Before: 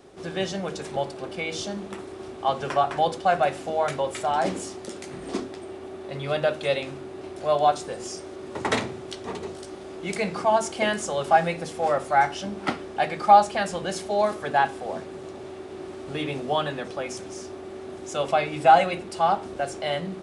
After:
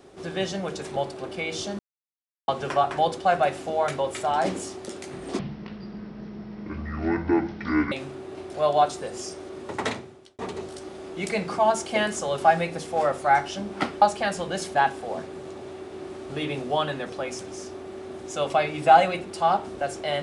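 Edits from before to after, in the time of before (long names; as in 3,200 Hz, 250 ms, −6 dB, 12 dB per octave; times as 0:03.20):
0:01.79–0:02.48: silence
0:05.39–0:06.78: play speed 55%
0:08.43–0:09.25: fade out linear
0:12.88–0:13.36: remove
0:14.09–0:14.53: remove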